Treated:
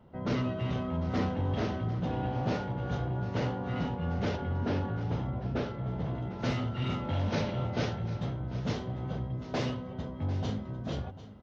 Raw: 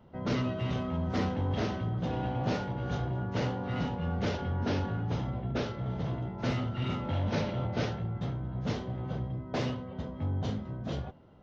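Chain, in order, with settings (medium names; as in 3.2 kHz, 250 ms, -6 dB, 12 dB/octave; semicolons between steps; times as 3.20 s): treble shelf 3.5 kHz -4.5 dB, from 4.36 s -10 dB, from 6.15 s +2 dB; delay 746 ms -15 dB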